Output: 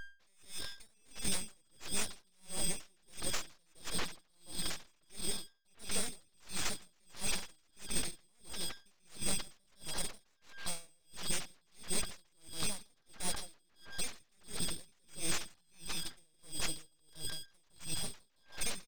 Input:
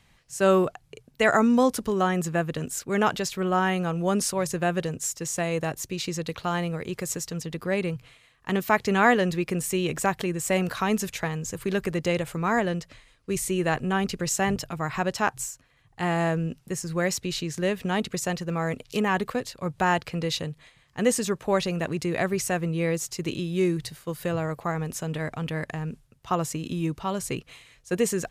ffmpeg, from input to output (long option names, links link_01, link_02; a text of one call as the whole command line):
ffmpeg -i in.wav -filter_complex "[0:a]afftfilt=real='real(if(lt(b,736),b+184*(1-2*mod(floor(b/184),2)),b),0)':imag='imag(if(lt(b,736),b+184*(1-2*mod(floor(b/184),2)),b),0)':win_size=2048:overlap=0.75,acrossover=split=270 3200:gain=0.1 1 0.2[link_01][link_02][link_03];[link_01][link_02][link_03]amix=inputs=3:normalize=0,agate=range=-33dB:threshold=-57dB:ratio=3:detection=peak,aemphasis=mode=reproduction:type=riaa,alimiter=level_in=6dB:limit=-24dB:level=0:latency=1:release=404,volume=-6dB,deesser=0.5,aresample=11025,aeval=exprs='0.0335*sin(PI/2*2.51*val(0)/0.0335)':channel_layout=same,aresample=44100,aecho=1:1:242|484|726:0.562|0.146|0.038,aeval=exprs='val(0)+0.00794*sin(2*PI*800*n/s)':channel_layout=same,aeval=exprs='abs(val(0))':channel_layout=same,atempo=1.5,aeval=exprs='val(0)*pow(10,-40*(0.5-0.5*cos(2*PI*1.5*n/s))/20)':channel_layout=same,volume=3.5dB" out.wav